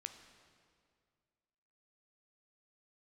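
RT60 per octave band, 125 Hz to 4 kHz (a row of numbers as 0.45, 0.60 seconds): 2.4, 2.3, 2.2, 2.0, 1.9, 1.7 seconds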